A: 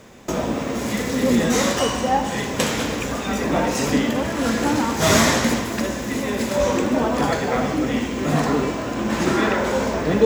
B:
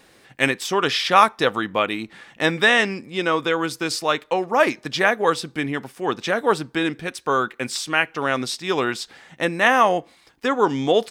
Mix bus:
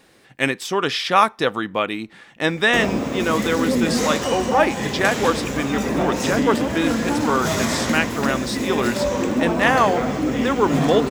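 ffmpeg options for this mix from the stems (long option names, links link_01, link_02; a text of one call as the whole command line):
ffmpeg -i stem1.wav -i stem2.wav -filter_complex "[0:a]alimiter=limit=-11dB:level=0:latency=1:release=208,adelay=2450,volume=-1.5dB[link_01];[1:a]volume=-1.5dB[link_02];[link_01][link_02]amix=inputs=2:normalize=0,equalizer=frequency=210:width=0.55:gain=2.5" out.wav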